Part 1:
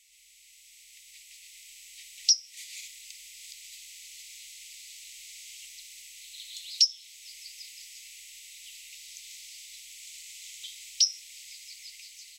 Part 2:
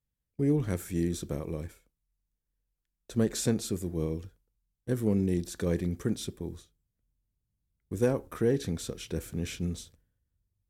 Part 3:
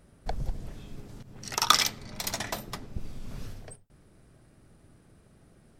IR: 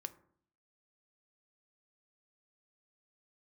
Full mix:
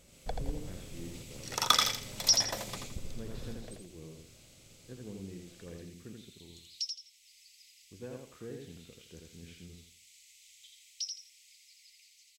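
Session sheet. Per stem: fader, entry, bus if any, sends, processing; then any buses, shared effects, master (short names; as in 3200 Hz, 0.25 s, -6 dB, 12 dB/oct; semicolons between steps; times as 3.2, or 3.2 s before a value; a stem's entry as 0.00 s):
2.57 s -3 dB -> 3.35 s -15 dB, 0.00 s, no send, echo send -4.5 dB, dry
-12.0 dB, 0.00 s, no send, echo send -3.5 dB, ladder low-pass 4400 Hz, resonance 30%
-5.5 dB, 0.00 s, no send, echo send -5.5 dB, small resonant body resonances 520/3400 Hz, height 10 dB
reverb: off
echo: feedback echo 83 ms, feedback 28%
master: dry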